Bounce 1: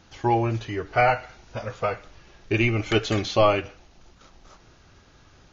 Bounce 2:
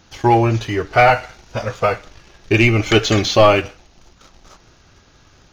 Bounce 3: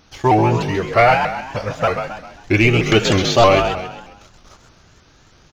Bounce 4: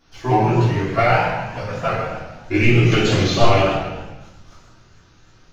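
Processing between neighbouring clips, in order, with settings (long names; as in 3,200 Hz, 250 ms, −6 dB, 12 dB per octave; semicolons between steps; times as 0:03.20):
high-shelf EQ 4,900 Hz +5.5 dB; leveller curve on the samples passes 1; level +5 dB
echo with shifted repeats 133 ms, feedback 44%, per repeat +44 Hz, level −7 dB; pitch modulation by a square or saw wave saw up 3.2 Hz, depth 160 cents; level −1 dB
rectangular room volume 210 cubic metres, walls mixed, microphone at 3.2 metres; level −13 dB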